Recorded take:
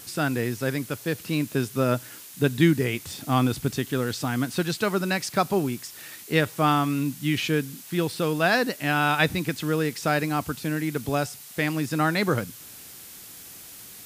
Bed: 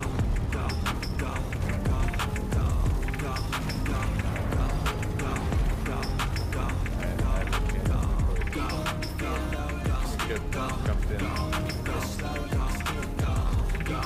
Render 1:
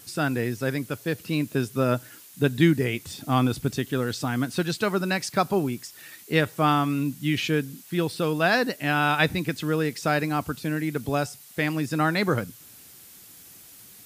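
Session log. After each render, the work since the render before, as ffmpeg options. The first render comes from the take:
-af "afftdn=nr=6:nf=-44"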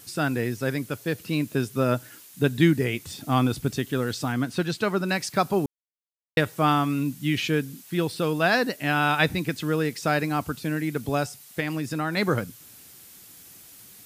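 -filter_complex "[0:a]asettb=1/sr,asplit=3[s0][s1][s2];[s0]atrim=end=4.324[s3];[s1]atrim=start=4.32:end=5.09,asetpts=PTS-STARTPTS,afade=t=in:d=0.004:c=qsin,afade=t=out:st=0.766:d=0.004:c=qsin,highshelf=f=5600:g=-6[s4];[s2]atrim=start=5.086[s5];[s3][s4]acrossfade=d=0.004:c1=hsin:c2=qsin[s6];[s6][s5]acrossfade=d=0.004:c1=qsin:c2=hsin,asettb=1/sr,asplit=3[s7][s8][s9];[s7]atrim=end=11.604[s10];[s8]atrim=start=11.6:end=12.17,asetpts=PTS-STARTPTS,afade=t=in:d=0.004:c=qsin,afade=t=out:st=0.566:d=0.004:c=qsin,acompressor=threshold=0.0562:ratio=2.5:attack=3.2:release=140:knee=1:detection=peak[s11];[s9]atrim=start=12.166[s12];[s10][s11]acrossfade=d=0.004:c1=hsin:c2=qsin[s13];[s13][s12]acrossfade=d=0.004:c1=qsin:c2=hsin,asplit=3[s14][s15][s16];[s14]atrim=end=5.66,asetpts=PTS-STARTPTS,afade=t=out:st=5.656:d=0.004:c=hsin[s17];[s15]atrim=start=5.66:end=6.37,asetpts=PTS-STARTPTS,volume=0[s18];[s16]atrim=start=6.37,asetpts=PTS-STARTPTS,afade=t=in:d=0.004:c=hsin[s19];[s17][s18][s19]concat=n=3:v=0:a=1"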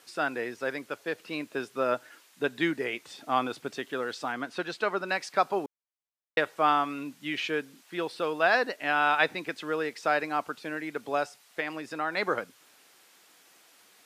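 -af "highpass=530,aemphasis=mode=reproduction:type=75fm"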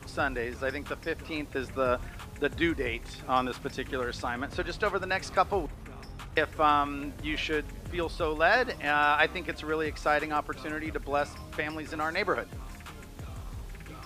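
-filter_complex "[1:a]volume=0.188[s0];[0:a][s0]amix=inputs=2:normalize=0"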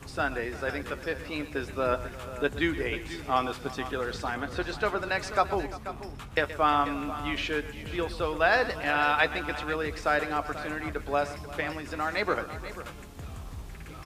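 -filter_complex "[0:a]asplit=2[s0][s1];[s1]adelay=14,volume=0.237[s2];[s0][s2]amix=inputs=2:normalize=0,aecho=1:1:123|345|487:0.188|0.126|0.211"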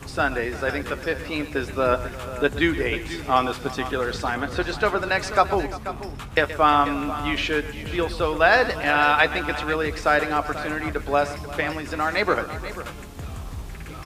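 -af "volume=2.11,alimiter=limit=0.708:level=0:latency=1"

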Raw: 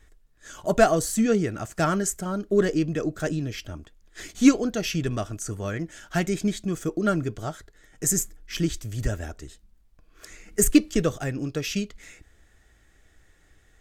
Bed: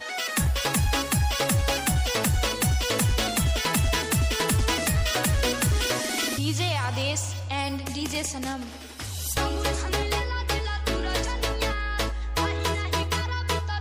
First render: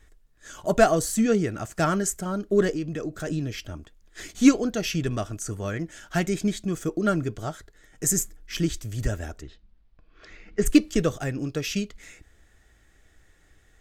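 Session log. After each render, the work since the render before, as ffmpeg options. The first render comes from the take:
-filter_complex "[0:a]asplit=3[s0][s1][s2];[s0]afade=t=out:st=2.72:d=0.02[s3];[s1]acompressor=threshold=0.0316:ratio=2:attack=3.2:release=140:knee=1:detection=peak,afade=t=in:st=2.72:d=0.02,afade=t=out:st=3.27:d=0.02[s4];[s2]afade=t=in:st=3.27:d=0.02[s5];[s3][s4][s5]amix=inputs=3:normalize=0,asplit=3[s6][s7][s8];[s6]afade=t=out:st=9.41:d=0.02[s9];[s7]lowpass=f=4400:w=0.5412,lowpass=f=4400:w=1.3066,afade=t=in:st=9.41:d=0.02,afade=t=out:st=10.65:d=0.02[s10];[s8]afade=t=in:st=10.65:d=0.02[s11];[s9][s10][s11]amix=inputs=3:normalize=0"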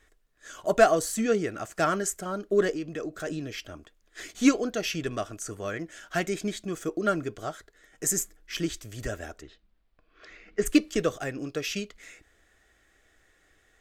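-af "bass=f=250:g=-11,treble=f=4000:g=-3,bandreject=f=880:w=12"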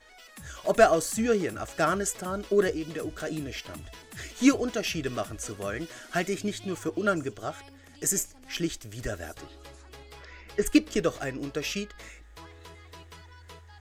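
-filter_complex "[1:a]volume=0.0794[s0];[0:a][s0]amix=inputs=2:normalize=0"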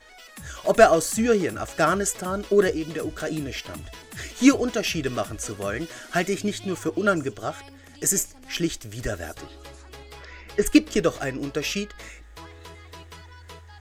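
-af "volume=1.68"

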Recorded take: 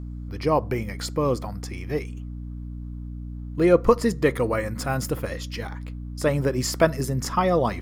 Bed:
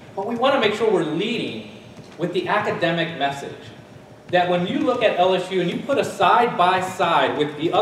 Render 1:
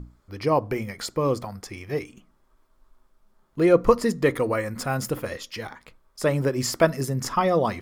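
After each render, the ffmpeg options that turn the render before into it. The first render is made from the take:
-af "bandreject=f=60:t=h:w=6,bandreject=f=120:t=h:w=6,bandreject=f=180:t=h:w=6,bandreject=f=240:t=h:w=6,bandreject=f=300:t=h:w=6"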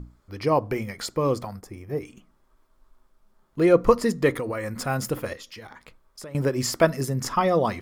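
-filter_complex "[0:a]asplit=3[s0][s1][s2];[s0]afade=t=out:st=1.59:d=0.02[s3];[s1]equalizer=f=3400:w=0.47:g=-14.5,afade=t=in:st=1.59:d=0.02,afade=t=out:st=2.02:d=0.02[s4];[s2]afade=t=in:st=2.02:d=0.02[s5];[s3][s4][s5]amix=inputs=3:normalize=0,asettb=1/sr,asplit=3[s6][s7][s8];[s6]atrim=end=4.304[s9];[s7]atrim=start=4.3:end=4.81,asetpts=PTS-STARTPTS,afade=t=in:d=0.004:c=qsin,afade=t=out:st=0.506:d=0.004:c=qsin,acompressor=threshold=0.0562:ratio=6:attack=3.2:release=140:knee=1:detection=peak[s10];[s8]atrim=start=4.806[s11];[s9][s10]acrossfade=d=0.004:c1=hsin:c2=qsin[s12];[s12][s11]acrossfade=d=0.004:c1=qsin:c2=hsin,asettb=1/sr,asplit=3[s13][s14][s15];[s13]atrim=end=5.334[s16];[s14]atrim=start=5.33:end=6.35,asetpts=PTS-STARTPTS,afade=t=in:d=0.004:c=qsin,afade=t=out:st=1.016:d=0.004:c=qsin,acompressor=threshold=0.0126:ratio=6:attack=3.2:release=140:knee=1:detection=peak[s17];[s15]atrim=start=6.346[s18];[s16][s17]acrossfade=d=0.004:c1=hsin:c2=qsin[s19];[s19][s18]acrossfade=d=0.004:c1=qsin:c2=hsin"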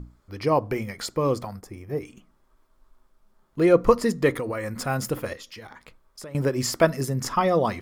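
-af anull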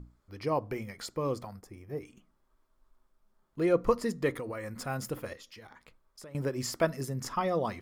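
-af "volume=0.376"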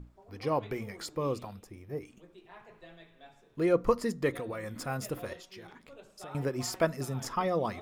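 -filter_complex "[1:a]volume=0.0251[s0];[0:a][s0]amix=inputs=2:normalize=0"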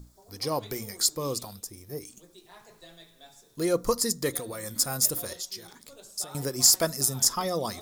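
-af "aexciter=amount=10.1:drive=3.2:freq=3900,asoftclip=type=hard:threshold=0.398"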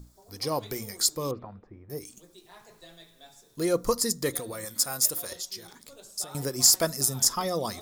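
-filter_complex "[0:a]asettb=1/sr,asplit=3[s0][s1][s2];[s0]atrim=end=1.314[s3];[s1]atrim=start=1.31:end=1.9,asetpts=PTS-STARTPTS,afade=t=in:d=0.004:c=qsin,afade=t=out:st=0.586:d=0.004:c=qsin,lowpass=f=1900:w=0.5412,lowpass=f=1900:w=1.3066[s4];[s2]atrim=start=1.896[s5];[s3][s4]acrossfade=d=0.004:c1=hsin:c2=qsin[s6];[s6][s5]acrossfade=d=0.004:c1=qsin:c2=hsin,asettb=1/sr,asplit=3[s7][s8][s9];[s7]atrim=end=4.654[s10];[s8]atrim=start=4.65:end=5.32,asetpts=PTS-STARTPTS,afade=t=in:d=0.004:c=qsin,afade=t=out:st=0.666:d=0.004:c=qsin,lowshelf=f=340:g=-10[s11];[s9]atrim=start=5.316[s12];[s10][s11]acrossfade=d=0.004:c1=hsin:c2=qsin[s13];[s13][s12]acrossfade=d=0.004:c1=qsin:c2=hsin"

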